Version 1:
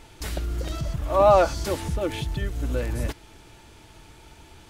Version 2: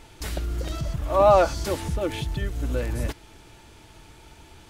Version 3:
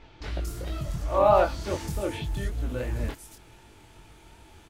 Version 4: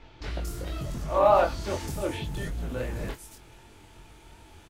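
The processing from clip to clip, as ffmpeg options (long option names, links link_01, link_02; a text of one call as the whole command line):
ffmpeg -i in.wav -af anull out.wav
ffmpeg -i in.wav -filter_complex "[0:a]flanger=delay=18.5:depth=6.6:speed=2.7,acrossover=split=5000[link_01][link_02];[link_02]adelay=230[link_03];[link_01][link_03]amix=inputs=2:normalize=0" out.wav
ffmpeg -i in.wav -filter_complex "[0:a]asplit=2[link_01][link_02];[link_02]adelay=23,volume=-10.5dB[link_03];[link_01][link_03]amix=inputs=2:normalize=0,acrossover=split=410|1800[link_04][link_05][link_06];[link_04]aeval=exprs='0.0398*(abs(mod(val(0)/0.0398+3,4)-2)-1)':channel_layout=same[link_07];[link_07][link_05][link_06]amix=inputs=3:normalize=0" out.wav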